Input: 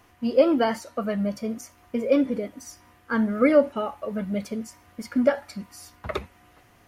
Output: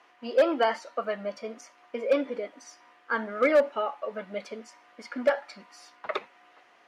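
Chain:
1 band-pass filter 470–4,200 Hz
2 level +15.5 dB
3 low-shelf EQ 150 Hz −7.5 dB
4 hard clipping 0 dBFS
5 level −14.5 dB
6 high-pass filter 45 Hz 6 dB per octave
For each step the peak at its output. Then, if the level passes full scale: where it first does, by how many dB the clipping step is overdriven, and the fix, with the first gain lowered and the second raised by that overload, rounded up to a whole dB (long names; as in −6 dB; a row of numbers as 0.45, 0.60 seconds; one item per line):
−8.5, +7.0, +6.5, 0.0, −14.5, −13.5 dBFS
step 2, 6.5 dB
step 2 +8.5 dB, step 5 −7.5 dB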